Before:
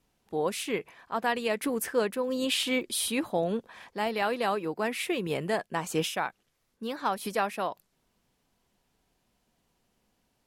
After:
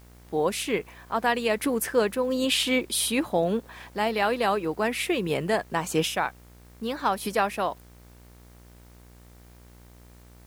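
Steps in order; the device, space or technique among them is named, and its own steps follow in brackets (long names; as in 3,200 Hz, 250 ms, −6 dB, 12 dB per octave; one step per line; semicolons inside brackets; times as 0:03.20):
video cassette with head-switching buzz (hum with harmonics 60 Hz, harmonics 40, −55 dBFS −6 dB per octave; white noise bed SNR 33 dB)
level +4 dB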